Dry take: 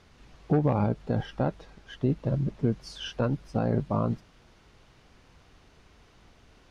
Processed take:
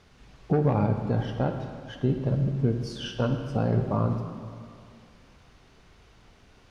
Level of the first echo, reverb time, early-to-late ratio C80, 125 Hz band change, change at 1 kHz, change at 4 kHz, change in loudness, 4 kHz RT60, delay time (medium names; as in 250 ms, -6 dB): no echo, 2.4 s, 7.5 dB, +3.0 dB, +1.0 dB, +1.0 dB, +1.5 dB, 1.5 s, no echo